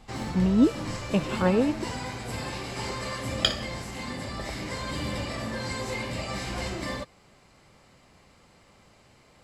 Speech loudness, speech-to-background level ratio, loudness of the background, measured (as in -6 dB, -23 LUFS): -25.5 LUFS, 7.0 dB, -32.5 LUFS